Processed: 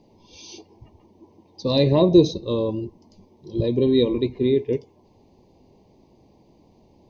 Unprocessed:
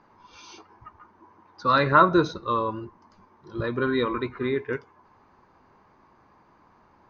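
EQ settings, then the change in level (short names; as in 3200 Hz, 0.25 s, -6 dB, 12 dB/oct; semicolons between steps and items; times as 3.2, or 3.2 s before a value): Butterworth band-stop 1400 Hz, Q 0.52; +7.5 dB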